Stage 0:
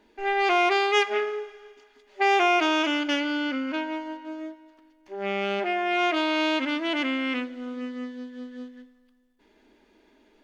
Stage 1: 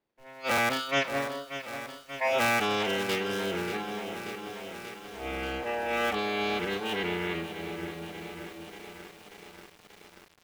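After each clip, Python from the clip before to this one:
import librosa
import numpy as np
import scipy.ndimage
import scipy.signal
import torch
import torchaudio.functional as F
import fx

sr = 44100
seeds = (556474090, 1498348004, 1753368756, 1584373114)

y = fx.cycle_switch(x, sr, every=3, mode='inverted')
y = fx.noise_reduce_blind(y, sr, reduce_db=19)
y = fx.echo_crushed(y, sr, ms=585, feedback_pct=80, bits=7, wet_db=-10.5)
y = F.gain(torch.from_numpy(y), -4.0).numpy()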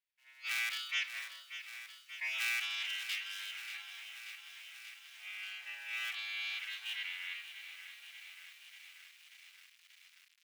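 y = fx.ladder_highpass(x, sr, hz=1800.0, resonance_pct=30)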